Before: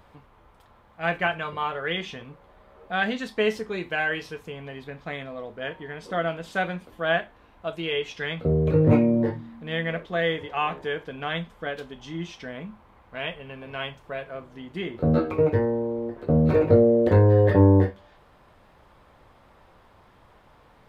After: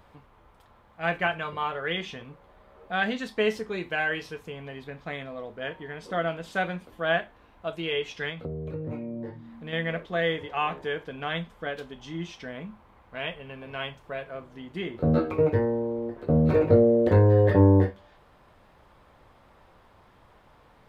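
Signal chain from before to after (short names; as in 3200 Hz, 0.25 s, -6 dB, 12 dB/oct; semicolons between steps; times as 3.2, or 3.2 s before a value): 8.29–9.73 compressor 4:1, threshold -33 dBFS, peak gain reduction 16.5 dB; gain -1.5 dB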